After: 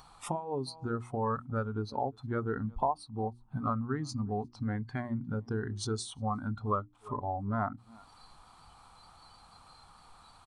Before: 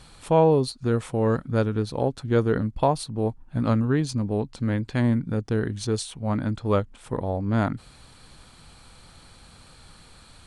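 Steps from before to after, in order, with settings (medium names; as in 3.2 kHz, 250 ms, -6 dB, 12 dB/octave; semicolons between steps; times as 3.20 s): in parallel at 0 dB: upward compressor, threshold -28 dBFS; on the sum: high-order bell 960 Hz +13 dB 1.1 oct; on a send: delay 355 ms -22.5 dB; on the sum: compression 2.5:1, threshold -22 dBFS, peak gain reduction 14.5 dB; spectral noise reduction 15 dB; hum notches 60/120/180/240/300/360 Hz; trim -9 dB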